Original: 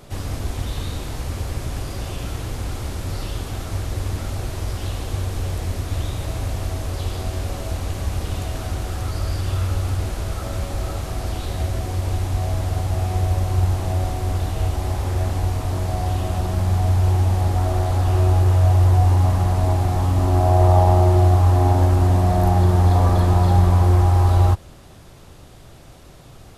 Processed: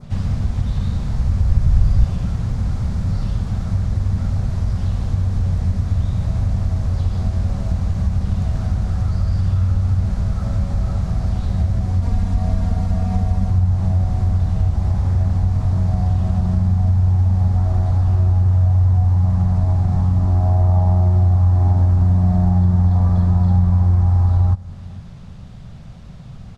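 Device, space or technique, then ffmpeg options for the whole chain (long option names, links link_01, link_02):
jukebox: -filter_complex "[0:a]lowpass=5400,lowshelf=frequency=250:width_type=q:width=3:gain=8,acompressor=threshold=-13dB:ratio=3,adynamicequalizer=threshold=0.00158:dfrequency=2900:dqfactor=1.4:tfrequency=2900:tqfactor=1.4:attack=5:release=100:ratio=0.375:range=4:mode=cutabove:tftype=bell,asettb=1/sr,asplit=3[link_01][link_02][link_03];[link_01]atrim=end=1.024[link_04];[link_02]atrim=start=1.02:end=2.04,asetpts=PTS-STARTPTS,afade=type=in:duration=0.004:curve=qsin,afade=type=out:start_time=1.016:duration=0.004:curve=qsin,asubboost=boost=10:cutoff=110[link_05];[link_03]atrim=start=2.036[link_06];[link_04][link_05]acrossfade=duration=0.004:curve1=hsin:curve2=qsin[link_07];[link_07][link_06]acrossfade=duration=0.004:curve1=qsin:curve2=hsin,asettb=1/sr,asplit=3[link_08][link_09][link_10];[link_08]atrim=end=12.024[link_11];[link_09]atrim=start=12.02:end=13.5,asetpts=PTS-STARTPTS,afade=type=in:duration=0.004:curve=qsin,afade=type=out:start_time=1.476:duration=0.004:curve=qsin,aecho=1:1:4.3:0.95,atrim=end_sample=65268[link_12];[link_10]atrim=start=13.496[link_13];[link_11][link_12]acrossfade=duration=0.004:curve1=hsin:curve2=qsin[link_14];[link_14][link_13]acrossfade=duration=0.004:curve1=qsin:curve2=hsin,asplit=2[link_15][link_16];[link_16]adelay=454.8,volume=-23dB,highshelf=frequency=4000:gain=-10.2[link_17];[link_15][link_17]amix=inputs=2:normalize=0,volume=-1dB"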